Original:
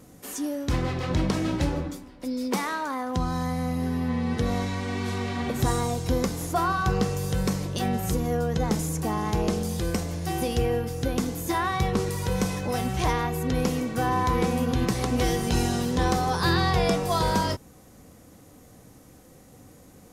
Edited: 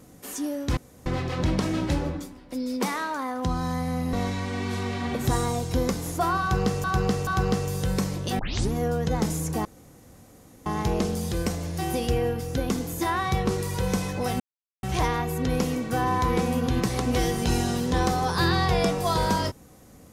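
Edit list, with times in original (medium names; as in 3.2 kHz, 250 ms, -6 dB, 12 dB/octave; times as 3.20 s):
0.77 s: insert room tone 0.29 s
3.84–4.48 s: delete
6.76–7.19 s: loop, 3 plays
7.88 s: tape start 0.33 s
9.14 s: insert room tone 1.01 s
12.88 s: insert silence 0.43 s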